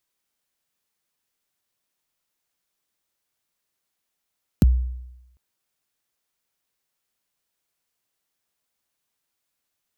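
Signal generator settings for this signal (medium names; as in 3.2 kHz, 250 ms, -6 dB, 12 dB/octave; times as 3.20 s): kick drum length 0.75 s, from 290 Hz, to 62 Hz, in 20 ms, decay 0.92 s, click on, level -9 dB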